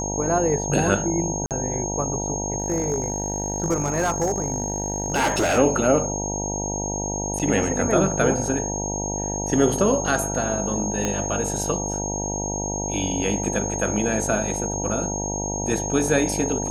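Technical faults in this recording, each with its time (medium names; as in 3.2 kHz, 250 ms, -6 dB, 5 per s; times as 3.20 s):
buzz 50 Hz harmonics 19 -29 dBFS
whine 6.5 kHz -28 dBFS
1.46–1.51 s: dropout 48 ms
2.58–5.59 s: clipped -17 dBFS
7.39–7.40 s: dropout 7.3 ms
11.05 s: pop -10 dBFS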